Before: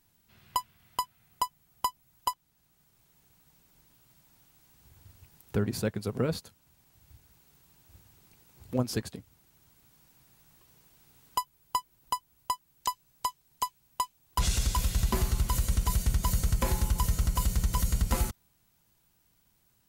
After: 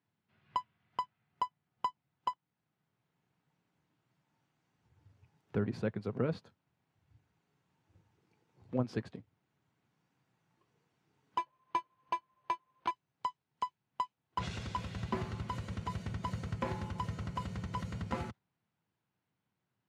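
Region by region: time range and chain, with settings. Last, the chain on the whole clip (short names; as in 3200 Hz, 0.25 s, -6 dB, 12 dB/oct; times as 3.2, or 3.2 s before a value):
11.38–12.91 careless resampling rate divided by 6×, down none, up hold + doubler 15 ms -14 dB
whole clip: LPF 2500 Hz 12 dB/oct; spectral noise reduction 6 dB; HPF 99 Hz 24 dB/oct; gain -4 dB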